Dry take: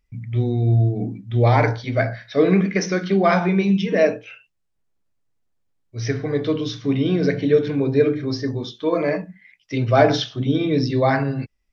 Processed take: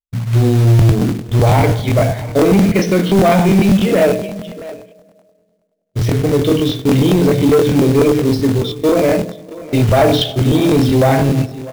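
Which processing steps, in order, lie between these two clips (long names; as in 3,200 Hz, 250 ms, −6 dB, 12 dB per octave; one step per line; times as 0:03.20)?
drawn EQ curve 110 Hz 0 dB, 670 Hz −2 dB, 1,700 Hz −14 dB, 3,300 Hz −2 dB, 5,200 Hz −12 dB
noise gate −36 dBFS, range −41 dB
on a send at −21 dB: convolution reverb RT60 1.9 s, pre-delay 30 ms
on the sum: dynamic equaliser 2,200 Hz, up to +5 dB, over −42 dBFS, Q 1.1
in parallel at +2 dB: brickwall limiter −16.5 dBFS, peak gain reduction 12 dB
on the sum: soft clipping −10.5 dBFS, distortion −16 dB
single-tap delay 647 ms −17.5 dB
floating-point word with a short mantissa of 2 bits
regular buffer underruns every 0.10 s, samples 1,024, repeat, from 0:00.77
level +5.5 dB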